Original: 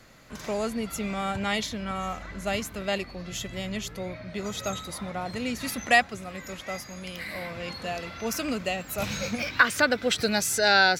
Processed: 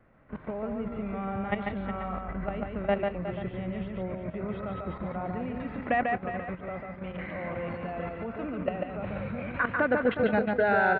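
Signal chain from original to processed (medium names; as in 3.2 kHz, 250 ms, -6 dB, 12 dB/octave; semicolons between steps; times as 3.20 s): level held to a coarse grid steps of 13 dB; Gaussian low-pass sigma 4.6 samples; multi-tap echo 144/172/363/485 ms -3.5/-18.5/-11/-14 dB; trim +5 dB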